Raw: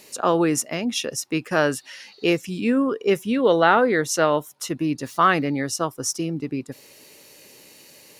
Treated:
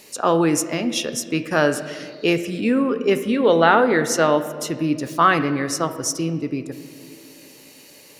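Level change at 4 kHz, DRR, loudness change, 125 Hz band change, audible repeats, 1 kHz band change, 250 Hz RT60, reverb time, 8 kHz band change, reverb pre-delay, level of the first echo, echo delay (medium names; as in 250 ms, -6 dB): +2.0 dB, 9.0 dB, +2.0 dB, +2.5 dB, no echo, +2.0 dB, 3.0 s, 2.1 s, +1.5 dB, 7 ms, no echo, no echo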